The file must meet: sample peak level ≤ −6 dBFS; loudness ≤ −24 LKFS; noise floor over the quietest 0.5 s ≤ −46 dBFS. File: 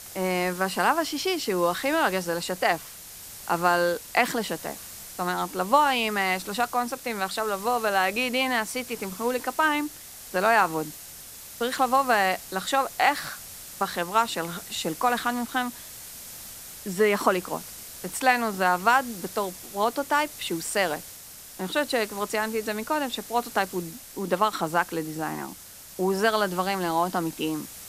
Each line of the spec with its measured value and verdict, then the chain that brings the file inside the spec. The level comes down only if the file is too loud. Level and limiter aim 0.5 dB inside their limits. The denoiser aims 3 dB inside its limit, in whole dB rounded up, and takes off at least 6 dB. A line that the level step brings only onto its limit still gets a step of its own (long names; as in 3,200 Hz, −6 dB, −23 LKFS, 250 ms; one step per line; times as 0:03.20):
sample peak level −5.0 dBFS: out of spec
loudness −26.0 LKFS: in spec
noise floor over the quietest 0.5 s −44 dBFS: out of spec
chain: broadband denoise 6 dB, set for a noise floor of −44 dBFS
brickwall limiter −6.5 dBFS